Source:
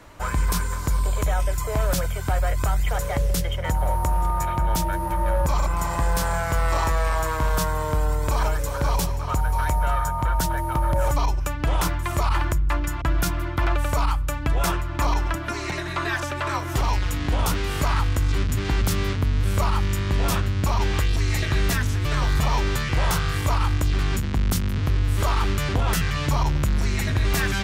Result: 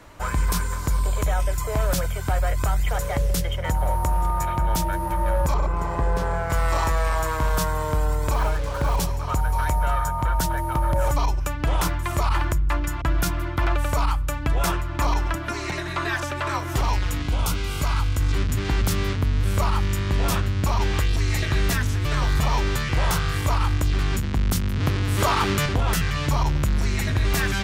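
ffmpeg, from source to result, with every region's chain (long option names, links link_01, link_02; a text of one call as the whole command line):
ffmpeg -i in.wav -filter_complex "[0:a]asettb=1/sr,asplit=3[link_01][link_02][link_03];[link_01]atrim=end=5.544[link_04];[link_02]atrim=start=5.54:end=6.5,asetpts=PTS-STARTPTS,afade=type=in:duration=0.004:curve=qsin,afade=type=out:start_time=0.956:duration=0.004:curve=qsin,lowpass=frequency=1500:poles=1,equalizer=frequency=420:width_type=o:width=0.43:gain=9.5,aeval=exprs='sgn(val(0))*max(abs(val(0))-0.00251,0)':channel_layout=same[link_05];[link_03]atrim=start=6.496[link_06];[link_04][link_05]acrossfade=duration=0.004:curve1=hsin:curve2=qsin[link_07];[link_07][link_06]acrossfade=duration=0.004:curve1=qsin:curve2=hsin,asettb=1/sr,asplit=3[link_08][link_09][link_10];[link_08]atrim=end=8.344[link_11];[link_09]atrim=start=8.34:end=9,asetpts=PTS-STARTPTS,afade=type=in:duration=0.004:curve=qsin,afade=type=out:start_time=0.656:duration=0.004:curve=qsin,lowpass=3200,acrusher=bits=5:mix=0:aa=0.5[link_12];[link_10]atrim=start=8.996[link_13];[link_11][link_12]acrossfade=duration=0.004:curve1=hsin:curve2=qsin[link_14];[link_14][link_13]acrossfade=duration=0.004:curve1=qsin:curve2=hsin,asettb=1/sr,asplit=3[link_15][link_16][link_17];[link_15]atrim=end=17.224[link_18];[link_16]atrim=start=17.22:end=18.2,asetpts=PTS-STARTPTS,afade=type=in:duration=0.004:curve=qsin,afade=type=out:start_time=0.976:duration=0.004:curve=qsin,asuperstop=centerf=1800:order=12:qfactor=7.8,equalizer=frequency=550:width=0.39:gain=-5[link_19];[link_17]atrim=start=18.196[link_20];[link_18][link_19]acrossfade=duration=0.004:curve1=hsin:curve2=qsin[link_21];[link_21][link_20]acrossfade=duration=0.004:curve1=qsin:curve2=hsin,asettb=1/sr,asplit=3[link_22][link_23][link_24];[link_22]atrim=end=24.804[link_25];[link_23]atrim=start=24.8:end=25.66,asetpts=PTS-STARTPTS,afade=type=in:duration=0.004:curve=qsin,afade=type=out:start_time=0.856:duration=0.004:curve=qsin,highpass=110,acontrast=30[link_26];[link_24]atrim=start=25.656[link_27];[link_25][link_26]acrossfade=duration=0.004:curve1=hsin:curve2=qsin[link_28];[link_28][link_27]acrossfade=duration=0.004:curve1=qsin:curve2=hsin" out.wav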